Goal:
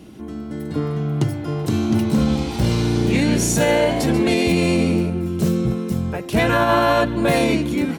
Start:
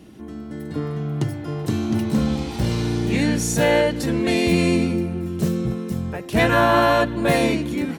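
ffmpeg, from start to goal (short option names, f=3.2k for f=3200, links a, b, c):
-filter_complex "[0:a]bandreject=f=1.8k:w=16,asettb=1/sr,asplit=3[a][b][c];[a]atrim=end=2.814[d];[b]atrim=start=2.81:end=5.1,asetpts=PTS-STARTPTS,afade=t=in:d=0.004:c=qsin,afade=t=out:st=2.286:d=0.004:c=qsin,asplit=5[e][f][g][h][i];[f]adelay=138,afreqshift=88,volume=-11.5dB[j];[g]adelay=276,afreqshift=176,volume=-20.1dB[k];[h]adelay=414,afreqshift=264,volume=-28.8dB[l];[i]adelay=552,afreqshift=352,volume=-37.4dB[m];[e][j][k][l][m]amix=inputs=5:normalize=0,atrim=end_sample=100989[n];[c]atrim=start=5.096[o];[d][n]acrossfade=d=0.004:c1=hsin:c2=qsin[p];[p][o]acrossfade=d=0.004:c1=qsin:c2=hsin,alimiter=level_in=10.5dB:limit=-1dB:release=50:level=0:latency=1,volume=-7dB"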